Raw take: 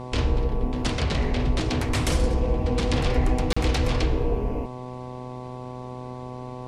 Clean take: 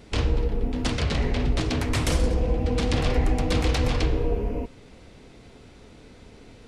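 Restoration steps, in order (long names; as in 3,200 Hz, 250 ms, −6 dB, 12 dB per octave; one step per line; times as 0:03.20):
hum removal 125.6 Hz, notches 9
repair the gap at 0:03.53, 35 ms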